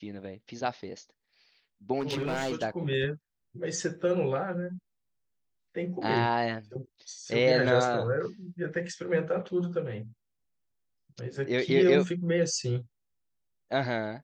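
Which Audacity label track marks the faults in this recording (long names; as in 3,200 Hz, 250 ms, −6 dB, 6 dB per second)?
1.990000	2.640000	clipping −26 dBFS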